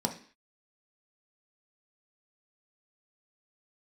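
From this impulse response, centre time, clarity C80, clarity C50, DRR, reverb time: 12 ms, 16.0 dB, 11.0 dB, 2.5 dB, 0.45 s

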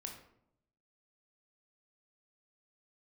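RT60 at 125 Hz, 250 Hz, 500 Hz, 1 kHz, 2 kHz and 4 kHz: 1.1, 0.95, 0.80, 0.70, 0.55, 0.40 s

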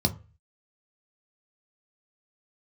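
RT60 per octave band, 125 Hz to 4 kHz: 0.50, 0.30, 0.35, 0.35, 0.35, 0.20 s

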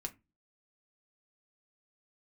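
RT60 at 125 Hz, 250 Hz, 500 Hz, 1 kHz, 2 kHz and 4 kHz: 0.40, 0.40, 0.25, 0.20, 0.20, 0.15 s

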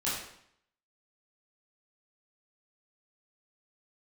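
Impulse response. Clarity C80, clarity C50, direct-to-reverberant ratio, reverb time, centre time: 5.0 dB, 2.0 dB, -9.5 dB, 0.70 s, 57 ms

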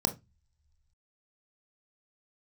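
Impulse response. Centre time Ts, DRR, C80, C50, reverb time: 8 ms, 6.5 dB, 26.0 dB, 16.5 dB, not exponential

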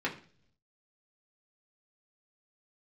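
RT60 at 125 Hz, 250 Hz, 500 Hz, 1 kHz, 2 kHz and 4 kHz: 1.0, 0.75, 0.55, 0.40, 0.45, 0.50 s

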